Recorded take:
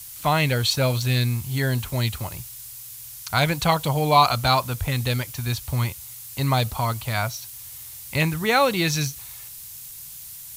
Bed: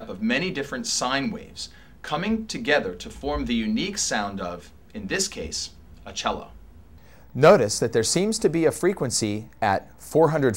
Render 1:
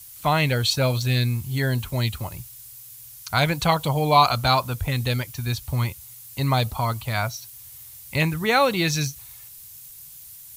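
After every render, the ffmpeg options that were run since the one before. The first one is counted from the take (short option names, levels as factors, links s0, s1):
-af "afftdn=nr=6:nf=-40"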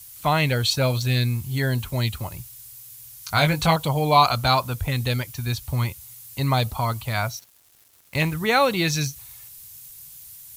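-filter_complex "[0:a]asettb=1/sr,asplit=3[s0][s1][s2];[s0]atrim=end=3.214[s3];[s1]atrim=start=3.21:end=3.76,asetpts=PTS-STARTPTS,afade=t=in:d=0.004:c=qsin,afade=t=out:st=0.546:d=0.004:c=qsin,asplit=2[s4][s5];[s5]adelay=19,volume=0.562[s6];[s4][s6]amix=inputs=2:normalize=0,atrim=end_sample=24255[s7];[s2]atrim=start=3.756[s8];[s3][s7]acrossfade=d=0.004:c1=hsin:c2=qsin[s9];[s9][s8]acrossfade=d=0.004:c1=qsin:c2=hsin,asettb=1/sr,asplit=3[s10][s11][s12];[s10]atrim=end=7.394[s13];[s11]atrim=start=7.39:end=8.33,asetpts=PTS-STARTPTS,afade=t=in:d=0.004:c=qsin,afade=t=out:st=0.936:d=0.004:c=qsin,aeval=exprs='sgn(val(0))*max(abs(val(0))-0.0112,0)':c=same[s14];[s12]atrim=start=8.326[s15];[s13][s14]acrossfade=d=0.004:c1=hsin:c2=qsin[s16];[s16][s15]acrossfade=d=0.004:c1=qsin:c2=hsin"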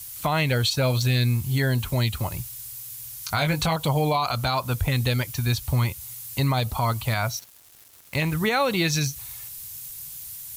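-filter_complex "[0:a]asplit=2[s0][s1];[s1]acompressor=threshold=0.0316:ratio=6,volume=0.794[s2];[s0][s2]amix=inputs=2:normalize=0,alimiter=limit=0.211:level=0:latency=1:release=124"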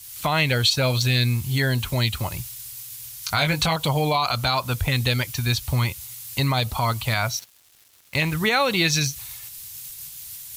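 -af "agate=range=0.501:threshold=0.0126:ratio=16:detection=peak,equalizer=f=3400:w=0.5:g=5.5"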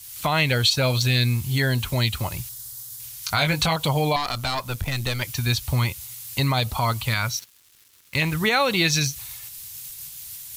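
-filter_complex "[0:a]asettb=1/sr,asplit=3[s0][s1][s2];[s0]atrim=end=2.494[s3];[s1]atrim=start=2.49:end=3,asetpts=PTS-STARTPTS,afade=t=in:d=0.004:c=qsin,afade=t=out:st=0.506:d=0.004:c=qsin,equalizer=f=2500:w=2.1:g=-13[s4];[s2]atrim=start=2.996[s5];[s3][s4]acrossfade=d=0.004:c1=hsin:c2=qsin[s6];[s6][s5]acrossfade=d=0.004:c1=qsin:c2=hsin,asettb=1/sr,asplit=3[s7][s8][s9];[s7]atrim=end=4.164[s10];[s8]atrim=start=4.16:end=5.22,asetpts=PTS-STARTPTS,afade=t=in:d=0.004:c=qsin,afade=t=out:st=1.056:d=0.004:c=qsin,aeval=exprs='(tanh(7.08*val(0)+0.7)-tanh(0.7))/7.08':c=same[s11];[s9]atrim=start=5.216[s12];[s10][s11]acrossfade=d=0.004:c1=hsin:c2=qsin[s13];[s13][s12]acrossfade=d=0.004:c1=qsin:c2=hsin,asettb=1/sr,asplit=3[s14][s15][s16];[s14]atrim=end=7.054[s17];[s15]atrim=start=7.05:end=8.21,asetpts=PTS-STARTPTS,afade=t=in:d=0.004:c=qsin,afade=t=out:st=1.156:d=0.004:c=qsin,equalizer=f=690:w=3.3:g=-11.5[s18];[s16]atrim=start=8.206[s19];[s17][s18]acrossfade=d=0.004:c1=hsin:c2=qsin[s20];[s20][s19]acrossfade=d=0.004:c1=qsin:c2=hsin"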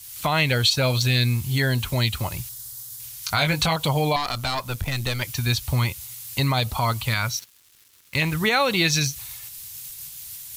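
-af anull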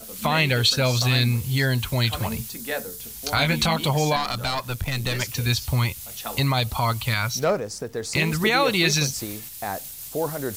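-filter_complex "[1:a]volume=0.376[s0];[0:a][s0]amix=inputs=2:normalize=0"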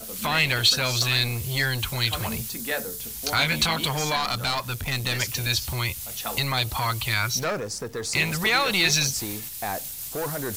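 -filter_complex "[0:a]aeval=exprs='0.422*(cos(1*acos(clip(val(0)/0.422,-1,1)))-cos(1*PI/2))+0.0266*(cos(5*acos(clip(val(0)/0.422,-1,1)))-cos(5*PI/2))':c=same,acrossover=split=1100[s0][s1];[s0]asoftclip=type=tanh:threshold=0.0422[s2];[s2][s1]amix=inputs=2:normalize=0"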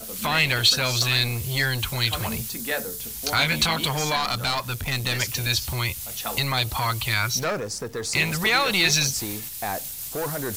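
-af "volume=1.12"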